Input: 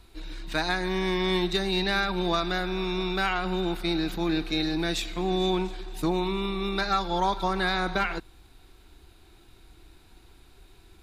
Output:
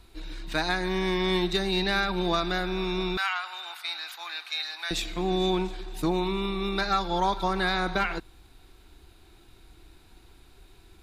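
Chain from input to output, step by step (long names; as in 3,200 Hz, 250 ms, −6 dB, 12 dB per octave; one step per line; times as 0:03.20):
0:03.17–0:04.91: high-pass filter 940 Hz 24 dB per octave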